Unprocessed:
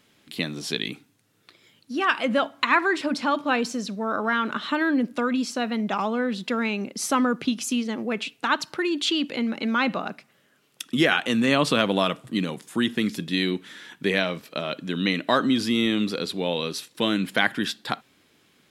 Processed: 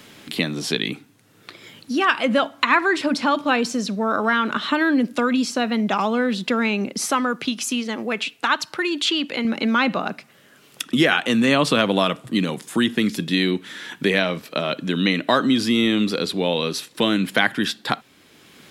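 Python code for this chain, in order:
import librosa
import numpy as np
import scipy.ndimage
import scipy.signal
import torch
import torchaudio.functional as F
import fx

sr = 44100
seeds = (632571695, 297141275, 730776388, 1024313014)

y = fx.low_shelf(x, sr, hz=490.0, db=-8.5, at=(7.05, 9.45))
y = fx.band_squash(y, sr, depth_pct=40)
y = F.gain(torch.from_numpy(y), 4.0).numpy()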